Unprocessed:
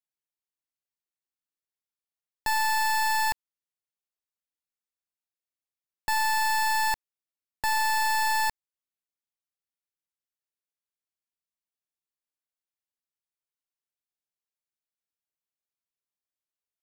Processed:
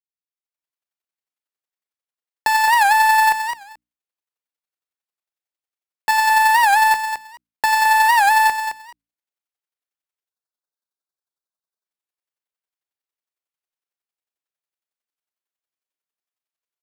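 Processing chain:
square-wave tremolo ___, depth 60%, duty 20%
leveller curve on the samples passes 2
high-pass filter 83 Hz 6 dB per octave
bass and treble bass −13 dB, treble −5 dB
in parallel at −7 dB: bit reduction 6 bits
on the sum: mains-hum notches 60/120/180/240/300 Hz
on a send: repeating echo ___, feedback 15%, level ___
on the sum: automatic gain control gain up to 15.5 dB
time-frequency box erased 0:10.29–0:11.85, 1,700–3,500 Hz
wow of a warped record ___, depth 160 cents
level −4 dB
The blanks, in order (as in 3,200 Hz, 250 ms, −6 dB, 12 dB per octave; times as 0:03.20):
11 Hz, 217 ms, −8 dB, 78 rpm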